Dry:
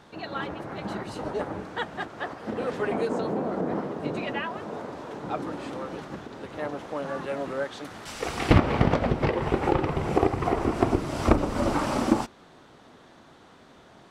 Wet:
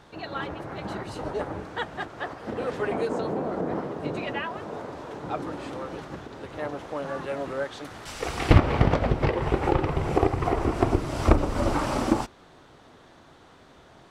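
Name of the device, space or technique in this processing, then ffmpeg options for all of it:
low shelf boost with a cut just above: -af "lowshelf=f=96:g=7,equalizer=f=210:t=o:w=0.63:g=-4.5"

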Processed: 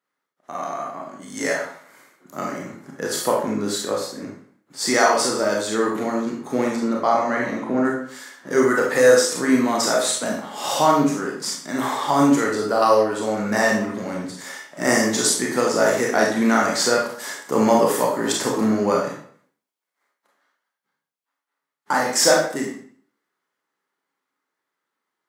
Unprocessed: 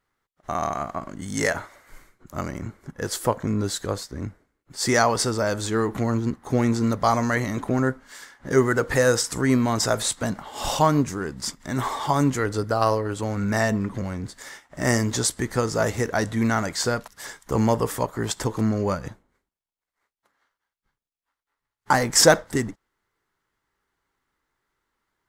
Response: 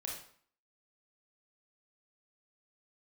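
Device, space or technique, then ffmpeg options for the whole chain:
far laptop microphone: -filter_complex "[0:a]asettb=1/sr,asplit=3[a][b][c];[a]atrim=end=6.764[d];[b]atrim=start=6.76:end=7.85,asetpts=PTS-STARTPTS,afade=t=in:d=0.004:c=qsin,afade=t=out:st=1.086:d=0.004:c=qsin,aemphasis=mode=reproduction:type=75kf[e];[c]atrim=start=7.846[f];[d][e]acrossfade=d=0.004:c1=hsin:c2=qsin[g];[g][f]acrossfade=d=0.004:c1=qsin:c2=hsin[h];[1:a]atrim=start_sample=2205[i];[h][i]afir=irnorm=-1:irlink=0,highpass=f=190:w=0.5412,highpass=f=190:w=1.3066,dynaudnorm=f=130:g=31:m=11.5dB,volume=-2dB"

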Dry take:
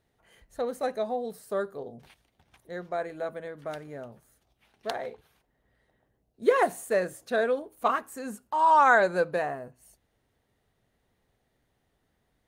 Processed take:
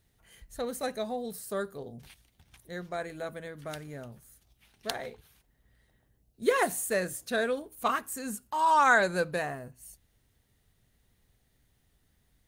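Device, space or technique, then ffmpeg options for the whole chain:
smiley-face EQ: -af "lowshelf=f=94:g=6,equalizer=f=640:t=o:w=2.6:g=-8.5,highshelf=f=6.2k:g=7,volume=3.5dB"

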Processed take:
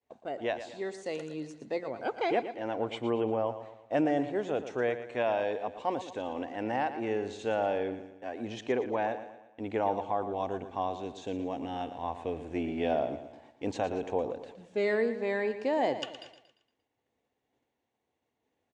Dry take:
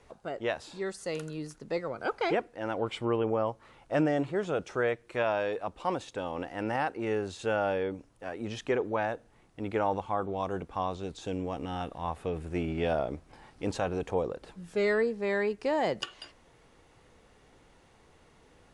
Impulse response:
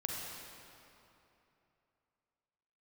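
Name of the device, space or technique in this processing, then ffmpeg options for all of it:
car door speaker: -af "highpass=110,equalizer=f=170:t=q:w=4:g=-9,equalizer=f=250:t=q:w=4:g=5,equalizer=f=720:t=q:w=4:g=4,equalizer=f=1.3k:t=q:w=4:g=-9,equalizer=f=5k:t=q:w=4:g=-6,lowpass=f=7.3k:w=0.5412,lowpass=f=7.3k:w=1.3066,agate=range=-33dB:threshold=-48dB:ratio=3:detection=peak,aecho=1:1:116|232|348|464|580:0.266|0.12|0.0539|0.0242|0.0109,volume=-1.5dB"

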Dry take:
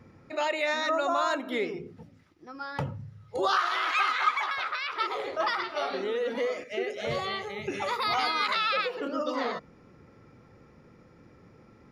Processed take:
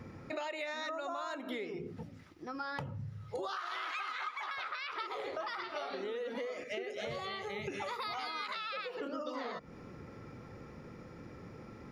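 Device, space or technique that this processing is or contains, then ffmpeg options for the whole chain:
serial compression, peaks first: -af "acompressor=threshold=-37dB:ratio=10,acompressor=threshold=-50dB:ratio=1.5,volume=5.5dB"

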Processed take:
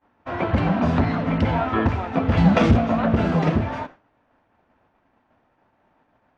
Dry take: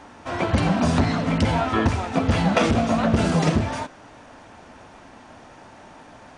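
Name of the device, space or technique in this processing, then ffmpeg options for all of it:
hearing-loss simulation: -filter_complex "[0:a]asettb=1/sr,asplit=3[a][b][c];[a]atrim=end=2.374[d];[b]atrim=start=2.37:end=2.77,asetpts=PTS-STARTPTS,afade=t=in:d=0.004:c=qsin,afade=t=out:st=0.396:d=0.004:c=qsin,bass=f=250:g=8,treble=f=4k:g=10[e];[c]atrim=start=2.766[f];[d][e]acrossfade=d=0.004:c1=hsin:c2=qsin[g];[g][f]acrossfade=d=0.004:c1=qsin:c2=hsin,lowpass=2.5k,agate=range=-33dB:threshold=-33dB:ratio=3:detection=peak"

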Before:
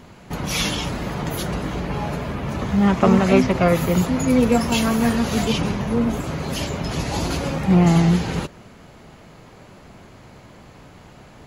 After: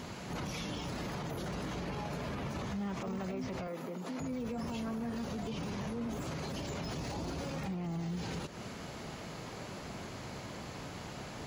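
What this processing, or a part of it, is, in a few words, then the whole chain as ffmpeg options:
broadcast voice chain: -filter_complex "[0:a]highpass=f=72:p=1,deesser=0.95,acompressor=threshold=-31dB:ratio=5,equalizer=f=5.4k:t=o:w=1.2:g=5.5,alimiter=level_in=8dB:limit=-24dB:level=0:latency=1:release=32,volume=-8dB,asettb=1/sr,asplit=3[a][b][c];[a]atrim=end=3.674[d];[b]atrim=start=3.67:end=4.2,asetpts=PTS-STARTPTS,afade=t=in:d=0.004:c=qsin,afade=t=out:st=0.526:d=0.004:c=qsin,highpass=f=200:w=0.5412,highpass=f=200:w=1.3066[e];[c]atrim=start=4.196[f];[d][e]acrossfade=d=0.004:c1=hsin:c2=qsin[g];[g][f]acrossfade=d=0.004:c1=qsin:c2=hsin,volume=1dB"

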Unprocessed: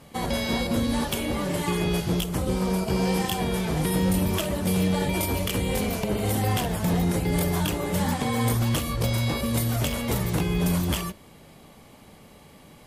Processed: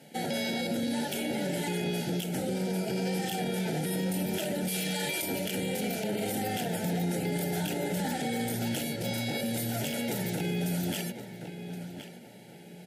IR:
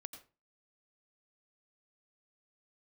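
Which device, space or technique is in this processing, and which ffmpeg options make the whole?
PA system with an anti-feedback notch: -filter_complex "[0:a]asettb=1/sr,asplit=3[a][b][c];[a]atrim=end=4.684[d];[b]atrim=start=4.68:end=5.22,asetpts=PTS-STARTPTS,afade=t=in:d=0.004:c=qsin,afade=t=out:st=0.536:d=0.004:c=qsin,tiltshelf=f=970:g=-7.5[e];[c]atrim=start=5.216[f];[d][e]acrossfade=d=0.004:c1=hsin:c2=qsin[g];[g][f]acrossfade=d=0.004:c1=qsin:c2=hsin,highpass=f=150:w=0.5412,highpass=f=150:w=1.3066,asuperstop=centerf=1100:order=8:qfactor=2.4,asplit=2[h][i];[i]adelay=1071,lowpass=f=3.5k:p=1,volume=-12.5dB,asplit=2[j][k];[k]adelay=1071,lowpass=f=3.5k:p=1,volume=0.32,asplit=2[l][m];[m]adelay=1071,lowpass=f=3.5k:p=1,volume=0.32[n];[h][j][l][n]amix=inputs=4:normalize=0,alimiter=limit=-21dB:level=0:latency=1:release=24,volume=-2dB"

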